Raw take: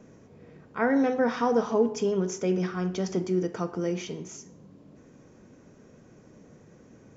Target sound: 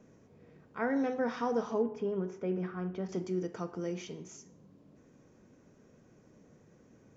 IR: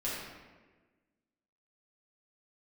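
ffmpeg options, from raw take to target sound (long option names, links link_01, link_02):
-filter_complex "[0:a]asettb=1/sr,asplit=3[link_01][link_02][link_03];[link_01]atrim=end=1.824[link_04];[link_02]atrim=start=1.82:end=3.09,asetpts=PTS-STARTPTS,afade=type=in:duration=0.004:curve=qsin,afade=type=out:start_time=1.266:duration=0.004:curve=qsin,lowpass=2100[link_05];[link_03]atrim=start=3.086[link_06];[link_04][link_05]acrossfade=duration=0.004:curve1=hsin:curve2=qsin[link_07];[link_07][link_06]acrossfade=duration=0.004:curve1=qsin:curve2=hsin,volume=-7.5dB"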